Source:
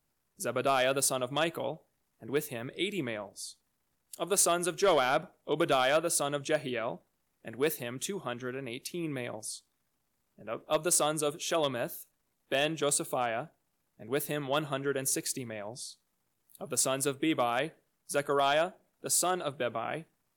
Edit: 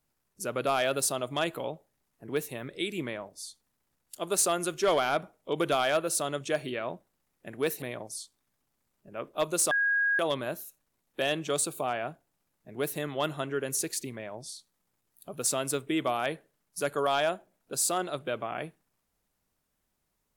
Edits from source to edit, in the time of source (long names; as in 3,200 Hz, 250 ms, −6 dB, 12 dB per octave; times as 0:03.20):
0:07.82–0:09.15: remove
0:11.04–0:11.52: beep over 1,640 Hz −23 dBFS